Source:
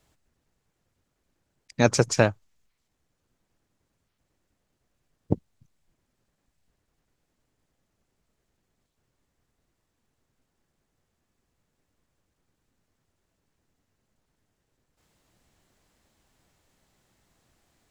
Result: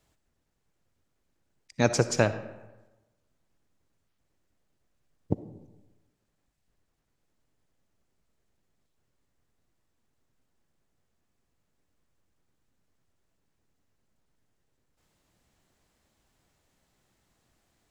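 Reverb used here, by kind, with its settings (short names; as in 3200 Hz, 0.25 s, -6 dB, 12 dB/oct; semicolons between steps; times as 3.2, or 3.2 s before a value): digital reverb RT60 1.1 s, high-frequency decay 0.6×, pre-delay 20 ms, DRR 12 dB; gain -3.5 dB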